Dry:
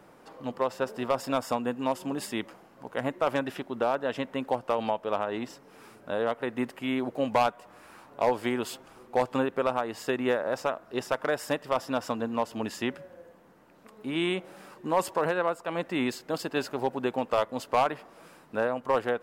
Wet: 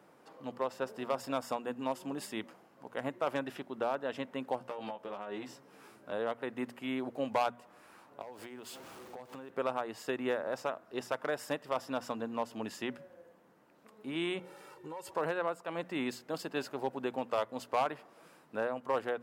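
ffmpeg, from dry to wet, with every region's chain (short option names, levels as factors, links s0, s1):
-filter_complex "[0:a]asettb=1/sr,asplit=3[s0][s1][s2];[s0]atrim=end=4.594[s3];[s1]atrim=start=4.59:end=6.12,asetpts=PTS-STARTPTS,afade=t=in:d=0.004:c=qsin,afade=t=out:st=1.526:d=0.004:c=qsin,acompressor=threshold=0.0316:ratio=10:attack=3.2:release=140:knee=1:detection=peak,asplit=2[s4][s5];[s5]adelay=15,volume=0.668[s6];[s4][s6]amix=inputs=2:normalize=0,atrim=end_sample=67473[s7];[s2]atrim=start=6.116[s8];[s3][s7]acrossfade=d=0.004:c1=hsin:c2=qsin[s9];[s9][s8]acrossfade=d=0.004:c1=qsin:c2=hsin,asettb=1/sr,asplit=3[s10][s11][s12];[s10]atrim=end=8.214[s13];[s11]atrim=start=8.21:end=9.5,asetpts=PTS-STARTPTS,afade=t=in:d=0.004:c=qsin,afade=t=out:st=1.286:d=0.004:c=qsin,aeval=exprs='val(0)+0.5*0.00891*sgn(val(0))':c=same,acompressor=threshold=0.0158:ratio=12:attack=3.2:release=140:knee=1:detection=peak[s14];[s12]atrim=start=9.496[s15];[s13][s14]acrossfade=d=0.004:c1=hsin:c2=qsin[s16];[s16][s15]acrossfade=d=0.004:c1=qsin:c2=hsin,asettb=1/sr,asplit=3[s17][s18][s19];[s17]atrim=end=14.394[s20];[s18]atrim=start=14.39:end=15.11,asetpts=PTS-STARTPTS,afade=t=in:d=0.004:c=qsin,afade=t=out:st=0.716:d=0.004:c=qsin,asubboost=boost=5.5:cutoff=170,aecho=1:1:2.2:0.89,atrim=end_sample=31752,acompressor=threshold=0.0178:ratio=5:attack=3.2:release=140:knee=1:detection=peak[s21];[s19]atrim=start=15.106[s22];[s20][s21]acrossfade=d=0.004:c1=hsin:c2=qsin[s23];[s23][s22]acrossfade=d=0.004:c1=qsin:c2=hsin,highpass=99,bandreject=f=60:t=h:w=6,bandreject=f=120:t=h:w=6,bandreject=f=180:t=h:w=6,bandreject=f=240:t=h:w=6,volume=0.473"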